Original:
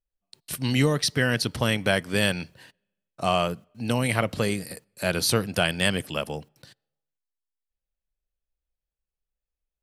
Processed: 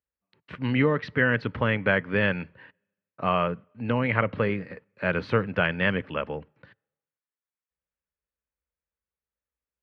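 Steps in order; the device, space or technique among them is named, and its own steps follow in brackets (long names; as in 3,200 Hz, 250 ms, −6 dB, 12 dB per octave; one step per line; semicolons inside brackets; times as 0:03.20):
bass cabinet (loudspeaker in its box 69–2,200 Hz, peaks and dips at 90 Hz −5 dB, 140 Hz −8 dB, 220 Hz −4 dB, 340 Hz −6 dB, 710 Hz −10 dB)
level +3.5 dB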